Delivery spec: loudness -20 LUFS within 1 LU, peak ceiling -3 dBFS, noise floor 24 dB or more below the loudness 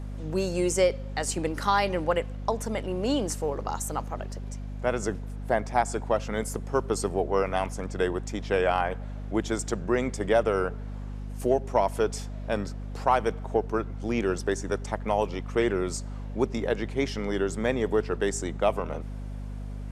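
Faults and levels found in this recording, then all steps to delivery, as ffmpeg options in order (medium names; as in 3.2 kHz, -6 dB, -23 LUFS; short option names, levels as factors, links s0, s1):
hum 50 Hz; highest harmonic 250 Hz; hum level -33 dBFS; loudness -28.5 LUFS; peak level -9.5 dBFS; loudness target -20.0 LUFS
-> -af "bandreject=f=50:t=h:w=6,bandreject=f=100:t=h:w=6,bandreject=f=150:t=h:w=6,bandreject=f=200:t=h:w=6,bandreject=f=250:t=h:w=6"
-af "volume=2.66,alimiter=limit=0.708:level=0:latency=1"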